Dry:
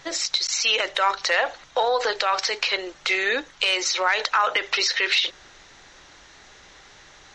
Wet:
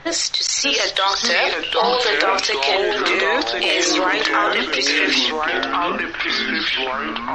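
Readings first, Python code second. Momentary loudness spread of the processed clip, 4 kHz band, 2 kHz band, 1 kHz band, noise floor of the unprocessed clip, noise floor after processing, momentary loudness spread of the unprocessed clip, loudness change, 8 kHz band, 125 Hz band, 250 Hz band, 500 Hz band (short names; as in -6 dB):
4 LU, +5.5 dB, +5.5 dB, +5.0 dB, -50 dBFS, -28 dBFS, 4 LU, +4.5 dB, +5.0 dB, n/a, +15.5 dB, +7.0 dB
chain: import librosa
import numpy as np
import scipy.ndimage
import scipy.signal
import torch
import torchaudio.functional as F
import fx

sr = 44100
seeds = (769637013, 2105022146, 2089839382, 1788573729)

p1 = fx.low_shelf(x, sr, hz=420.0, db=3.5)
p2 = fx.env_lowpass(p1, sr, base_hz=2500.0, full_db=-21.5)
p3 = fx.over_compress(p2, sr, threshold_db=-28.0, ratio=-1.0)
p4 = p2 + (p3 * 10.0 ** (0.0 / 20.0))
p5 = fx.echo_pitch(p4, sr, ms=575, semitones=-3, count=3, db_per_echo=-3.0)
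y = p5 * 10.0 ** (-1.0 / 20.0)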